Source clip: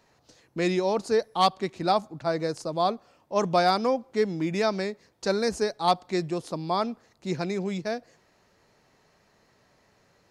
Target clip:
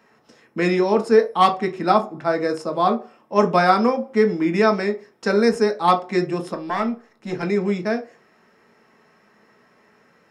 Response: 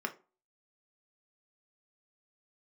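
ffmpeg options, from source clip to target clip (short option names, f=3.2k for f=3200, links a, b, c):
-filter_complex "[0:a]asettb=1/sr,asplit=3[a][b][c];[a]atrim=end=6.544[d];[b]atrim=start=6.54:end=7.43,asetpts=PTS-STARTPTS,afade=t=in:d=0.004:c=qsin,afade=t=out:st=0.886:d=0.004:c=qsin,aeval=exprs='(tanh(12.6*val(0)+0.55)-tanh(0.55))/12.6':c=same[e];[c]atrim=start=7.426[f];[d][e]acrossfade=d=0.004:c1=hsin:c2=qsin[g];[g][f]acrossfade=d=0.004:c1=qsin:c2=hsin[h];[1:a]atrim=start_sample=2205[i];[h][i]afir=irnorm=-1:irlink=0,volume=4dB"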